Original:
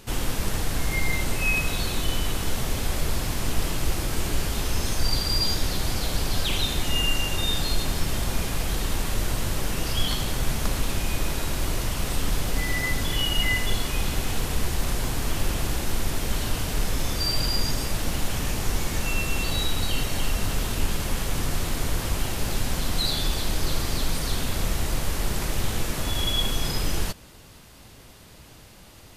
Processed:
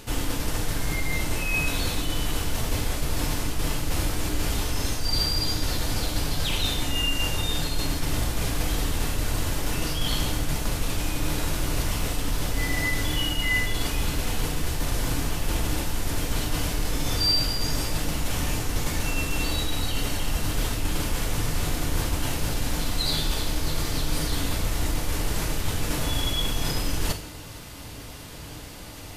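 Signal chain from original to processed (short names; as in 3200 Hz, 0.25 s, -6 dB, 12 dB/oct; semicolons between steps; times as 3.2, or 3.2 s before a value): reverse; compressor 6:1, threshold -29 dBFS, peak gain reduction 13 dB; reverse; FDN reverb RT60 0.63 s, low-frequency decay 1.2×, high-frequency decay 1×, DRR 4.5 dB; gain +6.5 dB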